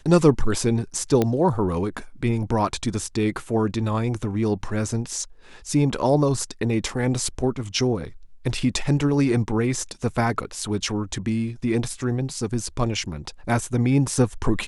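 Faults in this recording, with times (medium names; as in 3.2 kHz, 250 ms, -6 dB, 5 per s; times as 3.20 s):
1.22 s: pop -8 dBFS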